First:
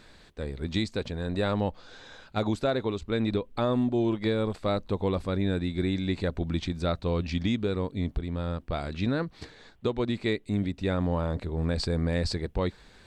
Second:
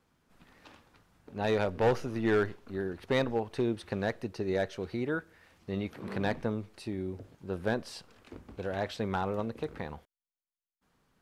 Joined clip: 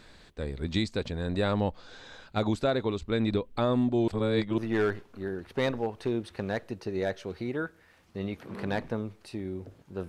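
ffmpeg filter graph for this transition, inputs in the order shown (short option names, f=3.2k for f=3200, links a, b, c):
-filter_complex "[0:a]apad=whole_dur=10.08,atrim=end=10.08,asplit=2[a][b];[a]atrim=end=4.082[c];[b]atrim=start=4.078:end=4.582,asetpts=PTS-STARTPTS,areverse[d];[1:a]atrim=start=2.108:end=7.61[e];[c][d]acrossfade=d=0.004:c1=hsin:c2=hsin[f];[f][e]acrossfade=d=0.004:c1=hsin:c2=hsin"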